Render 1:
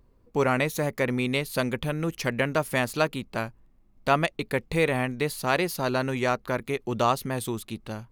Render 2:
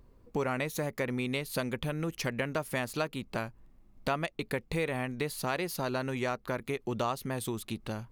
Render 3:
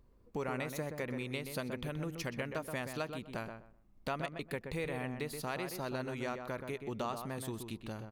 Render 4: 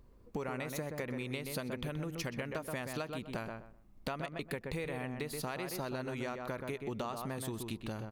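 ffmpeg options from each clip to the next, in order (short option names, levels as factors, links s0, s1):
-af "acompressor=threshold=0.0178:ratio=2.5,volume=1.26"
-filter_complex "[0:a]asplit=2[s0][s1];[s1]adelay=126,lowpass=f=1800:p=1,volume=0.501,asplit=2[s2][s3];[s3]adelay=126,lowpass=f=1800:p=1,volume=0.22,asplit=2[s4][s5];[s5]adelay=126,lowpass=f=1800:p=1,volume=0.22[s6];[s0][s2][s4][s6]amix=inputs=4:normalize=0,volume=0.473"
-af "acompressor=threshold=0.0112:ratio=6,volume=1.68"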